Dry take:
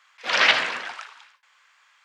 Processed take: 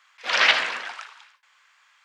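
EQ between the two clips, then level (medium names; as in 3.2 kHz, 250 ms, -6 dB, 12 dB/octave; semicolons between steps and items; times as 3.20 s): bass shelf 330 Hz -7.5 dB; 0.0 dB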